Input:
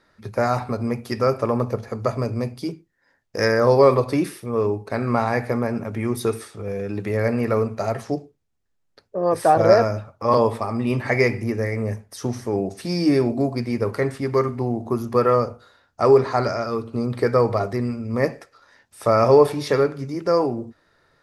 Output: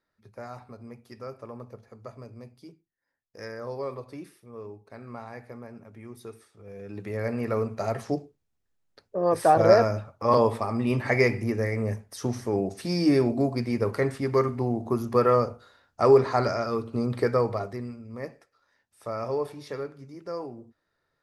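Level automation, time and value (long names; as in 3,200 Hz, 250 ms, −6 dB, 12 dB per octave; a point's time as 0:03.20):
0:06.51 −19.5 dB
0:06.98 −10 dB
0:08.11 −3 dB
0:17.15 −3 dB
0:18.18 −15.5 dB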